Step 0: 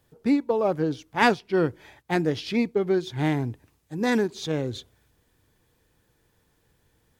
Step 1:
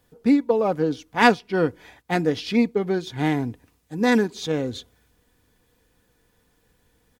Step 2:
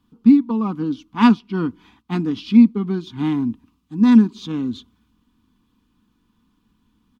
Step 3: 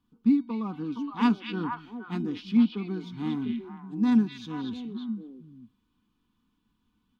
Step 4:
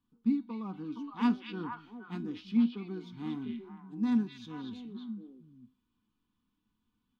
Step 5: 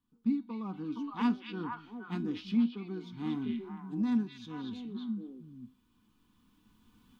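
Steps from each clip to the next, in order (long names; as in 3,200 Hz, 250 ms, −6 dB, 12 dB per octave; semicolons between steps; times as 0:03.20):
comb filter 4.1 ms, depth 38%; level +2 dB
drawn EQ curve 150 Hz 0 dB, 220 Hz +13 dB, 350 Hz +1 dB, 560 Hz −21 dB, 1,100 Hz +7 dB, 1,800 Hz −11 dB, 2,900 Hz +1 dB, 4,600 Hz −4 dB, 8,500 Hz −11 dB; level −1.5 dB
tuned comb filter 750 Hz, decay 0.41 s, mix 70%; on a send: echo through a band-pass that steps 233 ms, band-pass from 3,000 Hz, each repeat −1.4 octaves, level 0 dB
flanger 0.7 Hz, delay 7.7 ms, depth 2.8 ms, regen +80%; level −2.5 dB
camcorder AGC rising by 6.3 dB per second; level −1.5 dB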